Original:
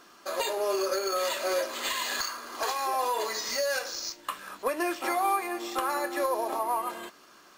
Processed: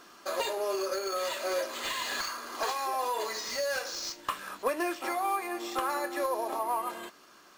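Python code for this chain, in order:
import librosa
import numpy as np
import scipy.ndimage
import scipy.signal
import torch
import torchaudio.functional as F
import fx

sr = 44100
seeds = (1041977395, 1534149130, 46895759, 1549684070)

y = fx.rider(x, sr, range_db=4, speed_s=0.5)
y = fx.slew_limit(y, sr, full_power_hz=160.0)
y = y * 10.0 ** (-2.0 / 20.0)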